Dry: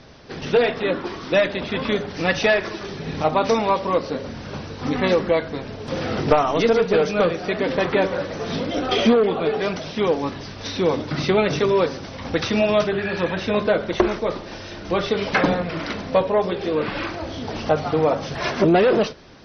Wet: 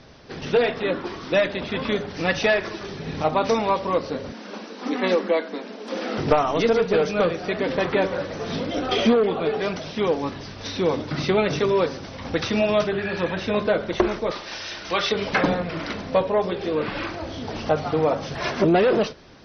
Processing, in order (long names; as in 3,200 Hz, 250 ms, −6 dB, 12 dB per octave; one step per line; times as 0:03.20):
0:04.32–0:06.18: Butterworth high-pass 190 Hz 96 dB per octave
0:14.31–0:15.12: tilt shelving filter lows −9 dB, about 700 Hz
level −2 dB